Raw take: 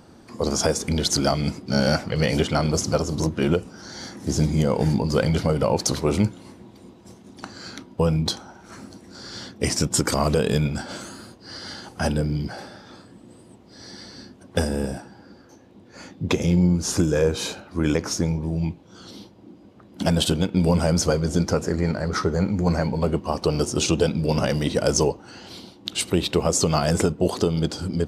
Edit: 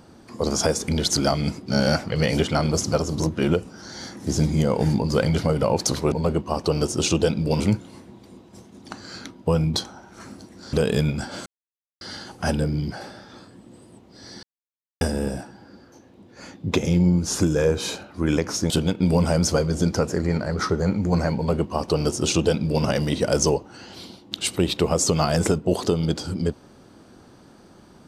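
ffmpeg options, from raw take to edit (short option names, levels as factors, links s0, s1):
-filter_complex "[0:a]asplit=9[s0][s1][s2][s3][s4][s5][s6][s7][s8];[s0]atrim=end=6.122[s9];[s1]atrim=start=22.898:end=24.382[s10];[s2]atrim=start=6.118:end=9.252[s11];[s3]atrim=start=10.298:end=11.03,asetpts=PTS-STARTPTS,afade=t=out:st=0.728:d=0.004:c=hsin[s12];[s4]atrim=start=11.03:end=11.58,asetpts=PTS-STARTPTS,volume=0[s13];[s5]atrim=start=11.58:end=14,asetpts=PTS-STARTPTS,afade=t=in:d=0.004:c=hsin,afade=t=out:st=2.416:d=0.004:c=hsin[s14];[s6]atrim=start=14:end=14.58,asetpts=PTS-STARTPTS,volume=0[s15];[s7]atrim=start=14.58:end=18.272,asetpts=PTS-STARTPTS,afade=t=in:d=0.004:c=hsin[s16];[s8]atrim=start=20.238[s17];[s9][s10]acrossfade=d=0.004:c1=hsin:c2=hsin[s18];[s18][s11]acrossfade=d=0.004:c1=hsin:c2=hsin[s19];[s12][s13][s14][s15][s16]concat=n=5:v=0:a=1[s20];[s19][s20]acrossfade=d=0.004:c1=hsin:c2=hsin[s21];[s21][s17]acrossfade=d=0.004:c1=hsin:c2=hsin"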